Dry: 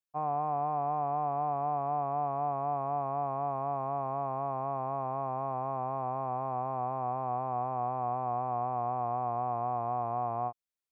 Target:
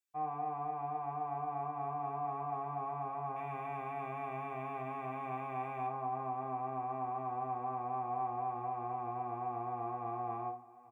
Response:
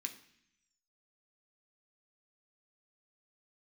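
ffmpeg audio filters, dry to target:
-filter_complex "[0:a]asettb=1/sr,asplit=3[a][b][c];[a]atrim=end=3.364[d];[b]atrim=start=3.36:end=5.87,asetpts=PTS-STARTPTS,afade=t=in:d=0.004:c=qsin,afade=t=out:st=2.506:d=0.004:c=qsin,highshelf=f=1.6k:t=q:w=1.5:g=9.5[e];[c]atrim=start=5.866[f];[d][e]acrossfade=d=0.004:c1=hsin:c2=qsin[g];[g][f]acrossfade=d=0.004:c1=qsin:c2=hsin,aecho=1:1:830|1660|2490|3320:0.0794|0.0413|0.0215|0.0112,alimiter=level_in=1.5dB:limit=-24dB:level=0:latency=1:release=38,volume=-1.5dB,aecho=1:1:2.6:0.79,bandreject=f=45.79:t=h:w=4,bandreject=f=91.58:t=h:w=4,bandreject=f=137.37:t=h:w=4,bandreject=f=183.16:t=h:w=4[h];[1:a]atrim=start_sample=2205,atrim=end_sample=6615[i];[h][i]afir=irnorm=-1:irlink=0"

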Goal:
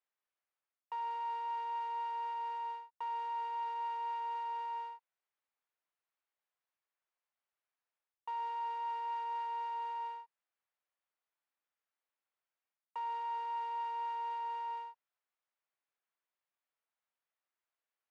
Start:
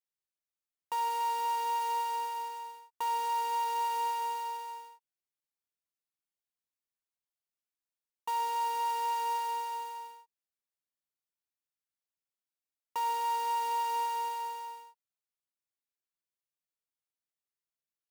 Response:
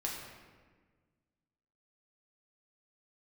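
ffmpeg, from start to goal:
-af "areverse,acompressor=threshold=-45dB:ratio=6,areverse,highpass=590,lowpass=2.1k,volume=8dB"

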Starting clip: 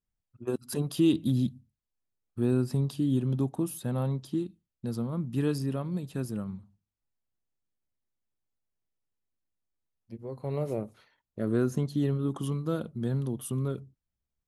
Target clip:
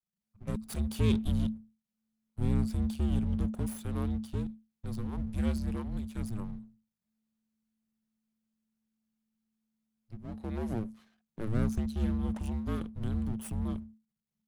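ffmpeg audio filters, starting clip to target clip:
-af "aeval=exprs='max(val(0),0)':c=same,afreqshift=-220"

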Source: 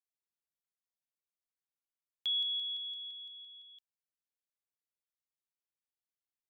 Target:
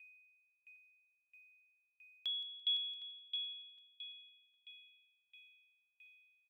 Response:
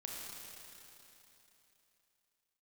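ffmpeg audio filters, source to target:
-filter_complex "[0:a]aeval=exprs='val(0)+0.000891*sin(2*PI*2500*n/s)':c=same,asplit=2[a][b];[b]adelay=761,lowpass=f=3.3k:p=1,volume=-10dB,asplit=2[c][d];[d]adelay=761,lowpass=f=3.3k:p=1,volume=0.47,asplit=2[e][f];[f]adelay=761,lowpass=f=3.3k:p=1,volume=0.47,asplit=2[g][h];[h]adelay=761,lowpass=f=3.3k:p=1,volume=0.47,asplit=2[i][j];[j]adelay=761,lowpass=f=3.3k:p=1,volume=0.47[k];[a][c][e][g][i][k]amix=inputs=6:normalize=0,aeval=exprs='val(0)*pow(10,-28*if(lt(mod(1.5*n/s,1),2*abs(1.5)/1000),1-mod(1.5*n/s,1)/(2*abs(1.5)/1000),(mod(1.5*n/s,1)-2*abs(1.5)/1000)/(1-2*abs(1.5)/1000))/20)':c=same,volume=6.5dB"

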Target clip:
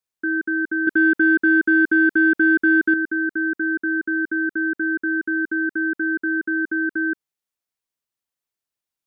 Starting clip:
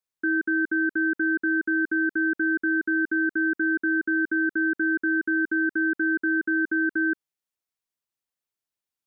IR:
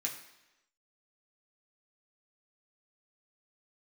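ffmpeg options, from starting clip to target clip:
-filter_complex "[0:a]asettb=1/sr,asplit=3[a][b][c];[a]atrim=end=0.874[d];[b]atrim=start=0.87:end=2.94,asetpts=PTS-STARTPTS,afade=t=in:d=0.004:c=qsin,afade=t=out:st=2.066:d=0.004:c=qsin,acontrast=71[e];[c]atrim=start=2.936[f];[d][e]acrossfade=d=0.004:c1=hsin:c2=qsin[g];[g][f]acrossfade=d=0.004:c1=qsin:c2=hsin,volume=1.5dB"

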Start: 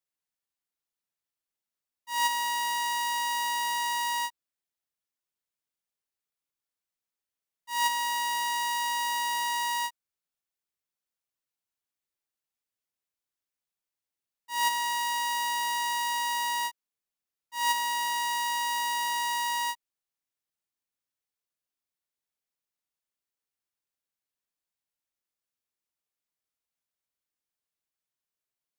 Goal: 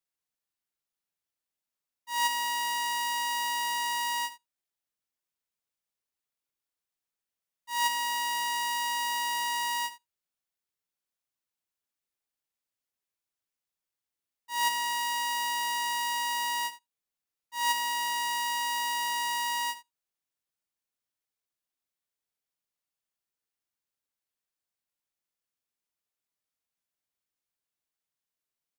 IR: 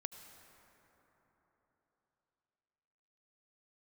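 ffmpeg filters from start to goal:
-filter_complex "[0:a]acrusher=bits=8:mode=log:mix=0:aa=0.000001,aecho=1:1:77:0.178,asplit=2[a][b];[1:a]atrim=start_sample=2205,afade=t=out:st=0.13:d=0.01,atrim=end_sample=6174[c];[b][c]afir=irnorm=-1:irlink=0,volume=-4.5dB[d];[a][d]amix=inputs=2:normalize=0,volume=-3.5dB"

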